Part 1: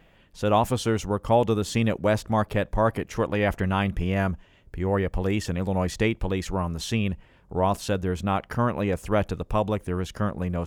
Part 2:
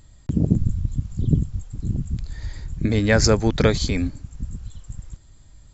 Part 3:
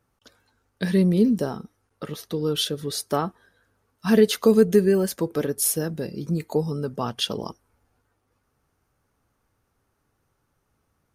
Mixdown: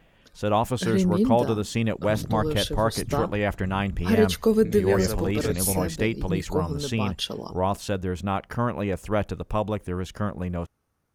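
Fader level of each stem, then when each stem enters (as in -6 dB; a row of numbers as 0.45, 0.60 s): -1.5, -13.5, -3.5 dB; 0.00, 1.80, 0.00 s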